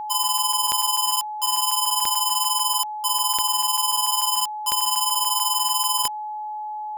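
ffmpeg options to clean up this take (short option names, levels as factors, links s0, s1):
-af "adeclick=t=4,bandreject=f=850:w=30"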